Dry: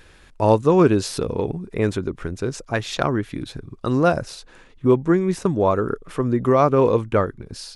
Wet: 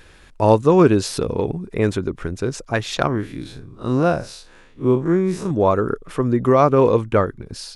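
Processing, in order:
0:03.07–0:05.51: spectrum smeared in time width 88 ms
level +2 dB

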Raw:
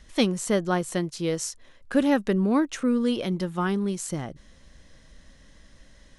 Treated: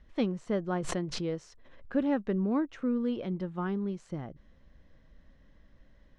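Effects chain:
head-to-tape spacing loss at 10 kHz 31 dB
0:00.75–0:01.94: background raised ahead of every attack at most 32 dB per second
level −5.5 dB

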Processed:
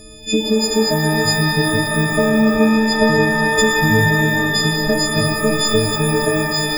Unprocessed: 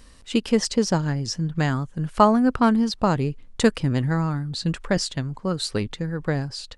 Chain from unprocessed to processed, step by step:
every partial snapped to a pitch grid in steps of 6 semitones
low shelf with overshoot 710 Hz +8.5 dB, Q 3
in parallel at +2.5 dB: brickwall limiter −4 dBFS, peak gain reduction 9 dB
on the sum: downward compressor, threshold −10 dBFS, peak gain reduction 12.5 dB
on a send: backwards echo 64 ms −21 dB
on the sum: reverb with rising layers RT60 3 s, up +12 semitones, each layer −2 dB, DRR 2.5 dB
level −5.5 dB

